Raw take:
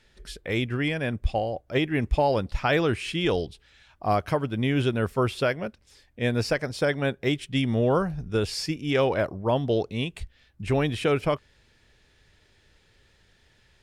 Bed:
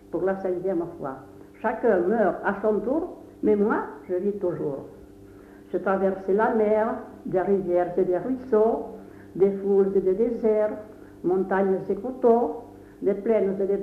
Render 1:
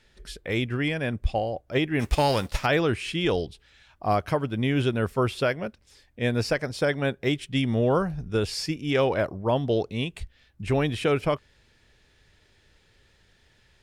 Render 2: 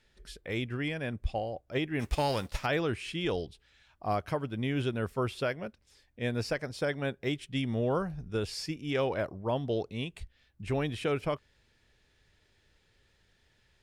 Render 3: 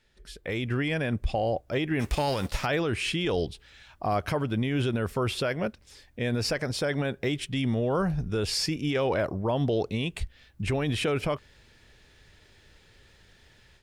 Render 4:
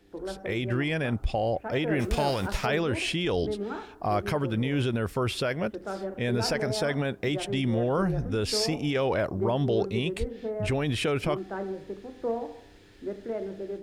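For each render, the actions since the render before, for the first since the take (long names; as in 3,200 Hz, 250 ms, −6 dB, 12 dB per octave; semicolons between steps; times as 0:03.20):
0:01.99–0:02.65: spectral envelope flattened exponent 0.6
level −7 dB
brickwall limiter −29 dBFS, peak gain reduction 10.5 dB; automatic gain control gain up to 11 dB
mix in bed −11.5 dB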